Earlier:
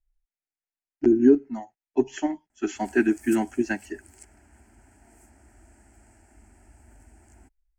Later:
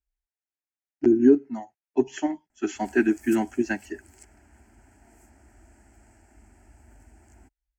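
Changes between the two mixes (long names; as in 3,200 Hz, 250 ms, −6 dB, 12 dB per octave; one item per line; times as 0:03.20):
speech: add high-pass filter 58 Hz
background: add parametric band 9,200 Hz −9 dB 0.23 octaves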